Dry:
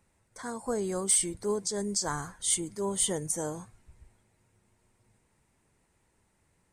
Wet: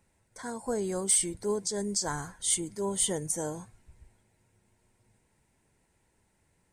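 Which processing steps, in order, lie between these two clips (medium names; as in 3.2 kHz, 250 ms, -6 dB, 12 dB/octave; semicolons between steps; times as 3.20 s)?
band-stop 1.2 kHz, Q 6.9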